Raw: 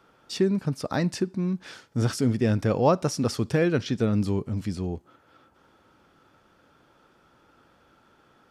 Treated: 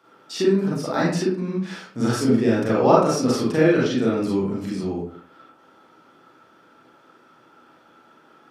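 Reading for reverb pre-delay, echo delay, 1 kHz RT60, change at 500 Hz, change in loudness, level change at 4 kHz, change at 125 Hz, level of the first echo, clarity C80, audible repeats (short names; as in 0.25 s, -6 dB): 33 ms, none, 0.55 s, +6.5 dB, +5.0 dB, +4.0 dB, -0.5 dB, none, 5.5 dB, none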